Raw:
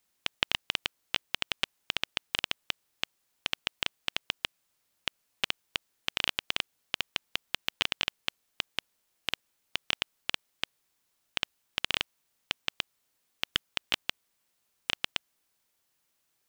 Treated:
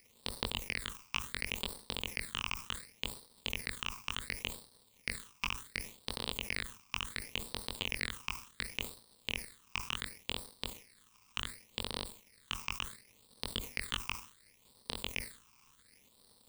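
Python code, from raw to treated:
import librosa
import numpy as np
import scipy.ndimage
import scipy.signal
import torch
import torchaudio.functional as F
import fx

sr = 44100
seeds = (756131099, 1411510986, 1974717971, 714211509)

y = fx.law_mismatch(x, sr, coded='mu')
y = fx.doubler(y, sr, ms=22.0, db=-12.5)
y = fx.dmg_crackle(y, sr, seeds[0], per_s=350.0, level_db=-44.0)
y = fx.ripple_eq(y, sr, per_octave=0.92, db=7)
y = fx.phaser_stages(y, sr, stages=8, low_hz=540.0, high_hz=2200.0, hz=0.69, feedback_pct=40)
y = fx.dynamic_eq(y, sr, hz=3800.0, q=1.2, threshold_db=-48.0, ratio=4.0, max_db=-6)
y = fx.sustainer(y, sr, db_per_s=120.0)
y = F.gain(torch.from_numpy(y), -2.5).numpy()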